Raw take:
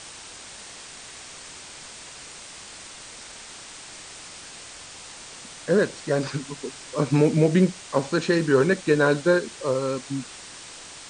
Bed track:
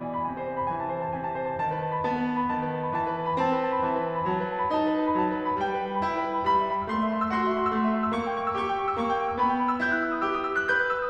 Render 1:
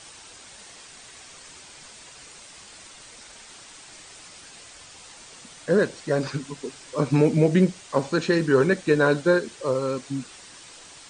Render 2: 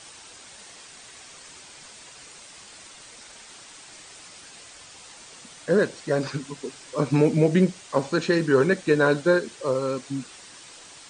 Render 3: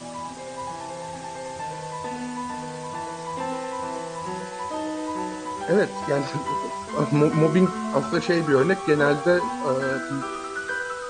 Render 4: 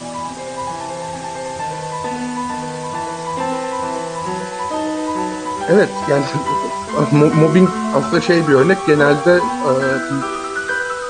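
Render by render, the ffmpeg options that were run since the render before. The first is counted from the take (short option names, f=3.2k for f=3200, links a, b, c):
-af "afftdn=nr=6:nf=-42"
-af "lowshelf=f=74:g=-6"
-filter_complex "[1:a]volume=-4.5dB[a];[0:a][a]amix=inputs=2:normalize=0"
-af "volume=8.5dB,alimiter=limit=-1dB:level=0:latency=1"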